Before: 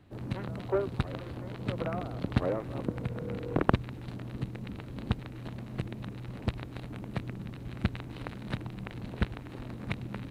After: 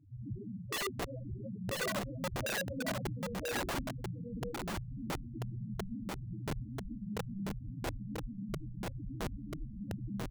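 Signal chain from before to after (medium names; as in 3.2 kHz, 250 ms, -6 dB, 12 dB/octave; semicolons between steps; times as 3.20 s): dynamic bell 130 Hz, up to -7 dB, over -49 dBFS, Q 6.8; chorus voices 6, 0.33 Hz, delay 26 ms, depth 4.3 ms; loudest bins only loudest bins 2; integer overflow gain 38 dB; on a send: delay 989 ms -3.5 dB; on the sum: trim +7 dB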